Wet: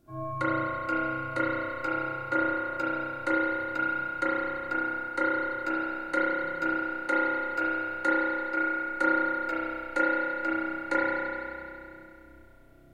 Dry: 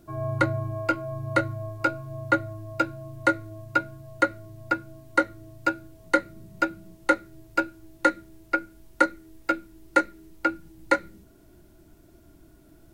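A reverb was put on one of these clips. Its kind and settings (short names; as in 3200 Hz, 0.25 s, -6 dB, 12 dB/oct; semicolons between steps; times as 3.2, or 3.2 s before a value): spring tank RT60 2.6 s, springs 31 ms, chirp 55 ms, DRR -9 dB; gain -10.5 dB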